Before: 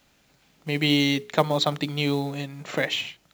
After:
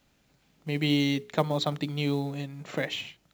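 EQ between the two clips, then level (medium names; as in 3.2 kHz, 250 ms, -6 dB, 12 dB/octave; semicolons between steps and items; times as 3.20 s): bass shelf 410 Hz +6 dB; -7.0 dB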